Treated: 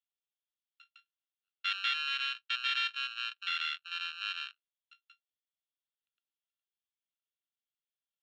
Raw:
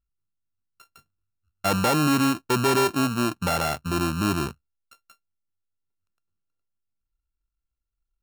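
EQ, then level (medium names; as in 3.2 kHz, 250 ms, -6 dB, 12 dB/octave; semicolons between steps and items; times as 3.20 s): steep high-pass 1.4 kHz 48 dB/octave; four-pole ladder low-pass 3.6 kHz, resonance 75%; +3.0 dB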